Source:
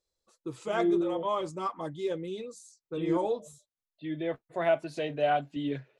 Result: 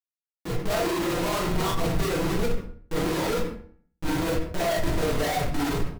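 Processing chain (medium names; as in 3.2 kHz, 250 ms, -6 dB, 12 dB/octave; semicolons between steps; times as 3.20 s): phase randomisation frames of 50 ms; low-pass 1.4 kHz 24 dB/octave; peaking EQ 190 Hz +3.5 dB 0.96 oct; delay 230 ms -24 dB; Schmitt trigger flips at -39 dBFS; reverberation RT60 0.45 s, pre-delay 6 ms, DRR -4 dB; transient shaper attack -3 dB, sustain +4 dB; de-hum 79.66 Hz, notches 29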